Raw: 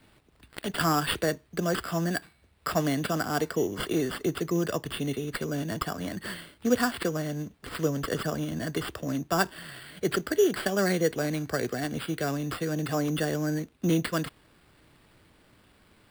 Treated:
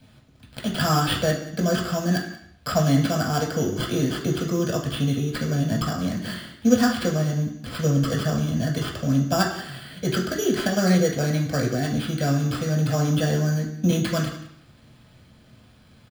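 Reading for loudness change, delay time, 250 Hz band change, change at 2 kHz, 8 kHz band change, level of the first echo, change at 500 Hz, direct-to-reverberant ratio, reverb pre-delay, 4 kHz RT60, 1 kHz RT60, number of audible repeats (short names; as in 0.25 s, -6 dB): +5.5 dB, 0.181 s, +6.5 dB, +2.5 dB, +5.0 dB, -17.0 dB, +3.0 dB, -1.0 dB, 3 ms, 0.70 s, 0.75 s, 1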